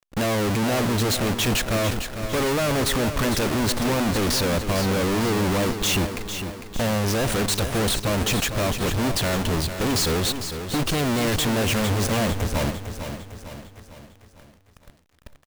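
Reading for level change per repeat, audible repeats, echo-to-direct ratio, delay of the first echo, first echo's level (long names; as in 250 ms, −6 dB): −6.0 dB, 5, −8.0 dB, 452 ms, −9.0 dB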